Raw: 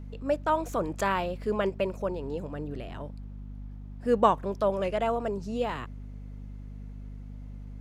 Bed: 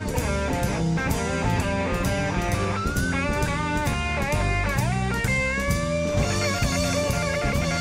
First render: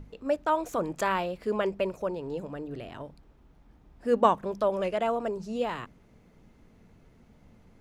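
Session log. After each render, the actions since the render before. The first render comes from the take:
mains-hum notches 50/100/150/200/250 Hz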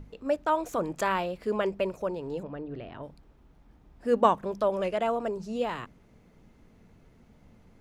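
0:02.43–0:03.03: high-frequency loss of the air 200 metres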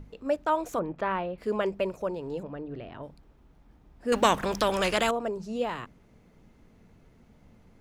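0:00.79–0:01.38: high-frequency loss of the air 380 metres
0:04.12–0:05.11: every bin compressed towards the loudest bin 2 to 1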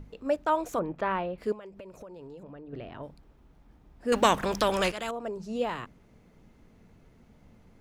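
0:01.52–0:02.73: downward compressor 16 to 1, threshold −41 dBFS
0:04.92–0:05.56: fade in, from −14 dB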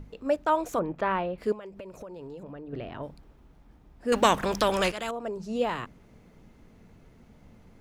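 speech leveller 2 s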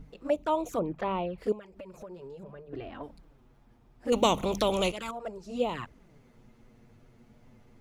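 flanger swept by the level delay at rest 9.9 ms, full sweep at −24 dBFS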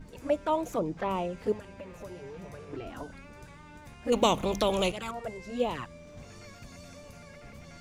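mix in bed −25 dB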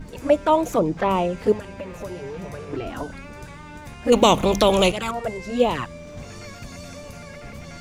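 level +10 dB
brickwall limiter −3 dBFS, peak gain reduction 2.5 dB

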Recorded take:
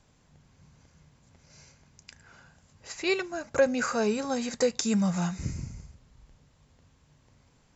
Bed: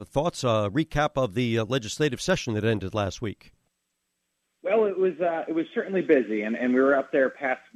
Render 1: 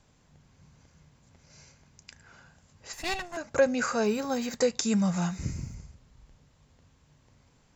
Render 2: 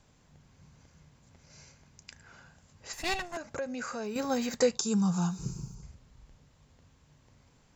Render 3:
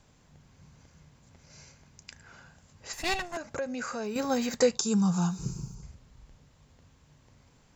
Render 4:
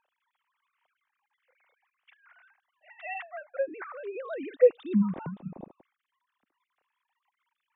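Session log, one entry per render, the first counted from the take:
0:02.93–0:03.37: lower of the sound and its delayed copy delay 1.1 ms; 0:04.05–0:04.56: linearly interpolated sample-rate reduction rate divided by 2×; 0:05.12–0:05.75: bit-depth reduction 12 bits, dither none
0:03.37–0:04.16: downward compressor 2.5 to 1, threshold −38 dBFS; 0:04.77–0:05.83: phaser with its sweep stopped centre 400 Hz, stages 8
level +2 dB
three sine waves on the formant tracks

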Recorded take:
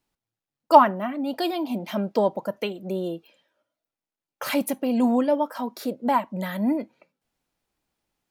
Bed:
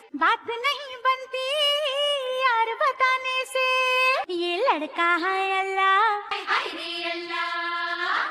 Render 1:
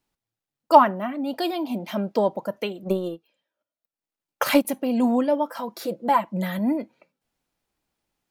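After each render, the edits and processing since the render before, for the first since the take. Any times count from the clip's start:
0:02.84–0:04.65: transient designer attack +11 dB, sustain −12 dB
0:05.48–0:06.59: comb filter 5.9 ms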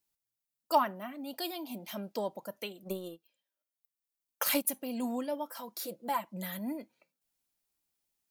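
first-order pre-emphasis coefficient 0.8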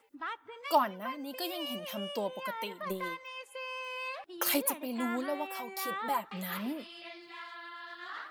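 mix in bed −18 dB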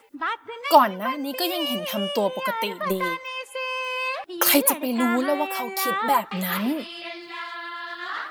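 level +11.5 dB

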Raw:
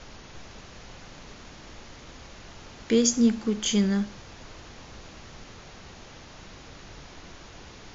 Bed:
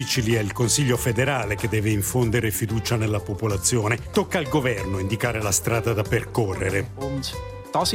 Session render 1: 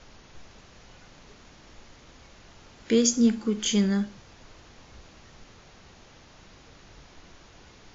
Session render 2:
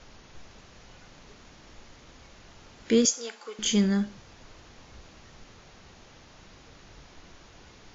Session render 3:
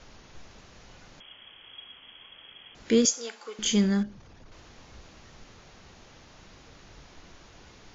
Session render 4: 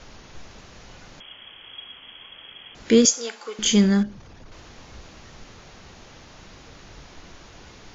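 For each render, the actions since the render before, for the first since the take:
noise reduction from a noise print 6 dB
0:03.05–0:03.59: high-pass filter 550 Hz 24 dB per octave
0:01.20–0:02.75: voice inversion scrambler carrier 3,300 Hz; 0:04.03–0:04.52: spectral envelope exaggerated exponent 1.5
level +6 dB

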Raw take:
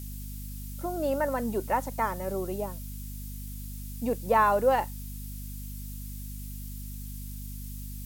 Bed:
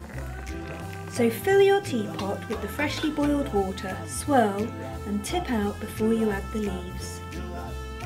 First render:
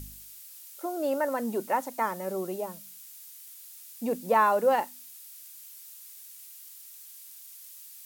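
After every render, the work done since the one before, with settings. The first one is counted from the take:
hum removal 50 Hz, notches 5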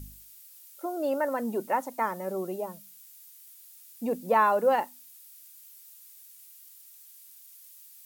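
broadband denoise 6 dB, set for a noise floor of −48 dBFS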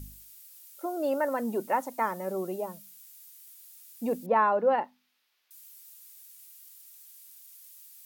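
0:04.26–0:05.51: high-frequency loss of the air 310 metres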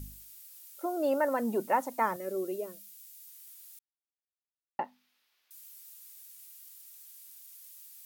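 0:02.16–0:03.28: phaser with its sweep stopped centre 360 Hz, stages 4
0:03.79–0:04.79: silence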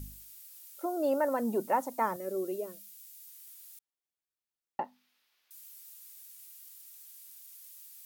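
dynamic equaliser 2,200 Hz, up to −5 dB, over −48 dBFS, Q 0.95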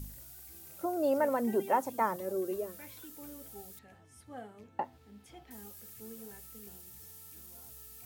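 mix in bed −25.5 dB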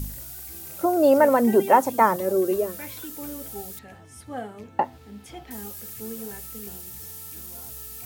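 level +12 dB

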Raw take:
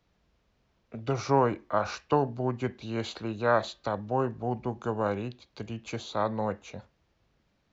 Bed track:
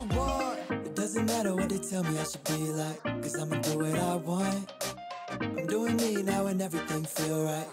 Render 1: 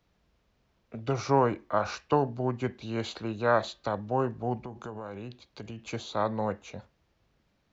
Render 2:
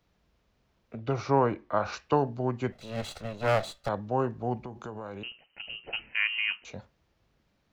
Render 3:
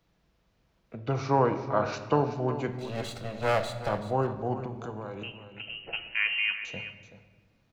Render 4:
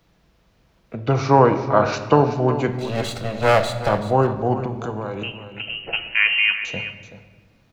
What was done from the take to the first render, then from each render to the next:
0:04.56–0:05.80: downward compressor 8 to 1, threshold −35 dBFS
0:00.95–0:01.93: high-frequency loss of the air 110 metres; 0:02.72–0:03.89: lower of the sound and its delayed copy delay 1.5 ms; 0:05.23–0:06.65: voice inversion scrambler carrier 3,000 Hz
single-tap delay 380 ms −12.5 dB; rectangular room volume 1,700 cubic metres, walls mixed, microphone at 0.69 metres
level +10 dB; brickwall limiter −1 dBFS, peak gain reduction 1 dB

